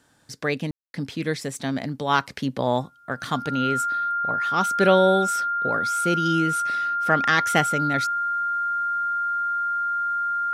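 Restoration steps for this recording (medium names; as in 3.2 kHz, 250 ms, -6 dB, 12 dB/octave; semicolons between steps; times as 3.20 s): band-stop 1.4 kHz, Q 30; room tone fill 0.71–0.94 s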